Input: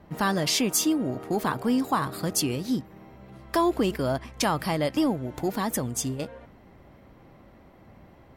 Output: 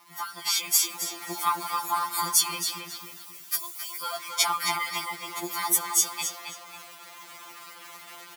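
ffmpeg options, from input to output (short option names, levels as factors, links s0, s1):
-filter_complex "[0:a]acompressor=threshold=0.0398:ratio=12,aecho=1:1:0.9:0.82,acrusher=bits=9:dc=4:mix=0:aa=0.000001,highpass=800,highshelf=f=6800:g=7,dynaudnorm=f=400:g=3:m=3.16,asettb=1/sr,asplit=3[s0][s1][s2];[s0]atrim=end=2.964[s3];[s1]atrim=start=2.96:end=4.03,asetpts=PTS-STARTPTS,afade=t=in:d=0.004:c=qsin,afade=t=out:st=1.066:d=0.004:c=qsin,aderivative[s4];[s2]atrim=start=4.026[s5];[s3][s4]acrossfade=d=0.004:c1=hsin:c2=qsin[s6];[s6][s5]acrossfade=d=0.004:c1=qsin:c2=hsin,asplit=2[s7][s8];[s8]adelay=269,lowpass=f=4300:p=1,volume=0.596,asplit=2[s9][s10];[s10]adelay=269,lowpass=f=4300:p=1,volume=0.41,asplit=2[s11][s12];[s12]adelay=269,lowpass=f=4300:p=1,volume=0.41,asplit=2[s13][s14];[s14]adelay=269,lowpass=f=4300:p=1,volume=0.41,asplit=2[s15][s16];[s16]adelay=269,lowpass=f=4300:p=1,volume=0.41[s17];[s7][s9][s11][s13][s15][s17]amix=inputs=6:normalize=0,afftfilt=real='re*2.83*eq(mod(b,8),0)':imag='im*2.83*eq(mod(b,8),0)':win_size=2048:overlap=0.75"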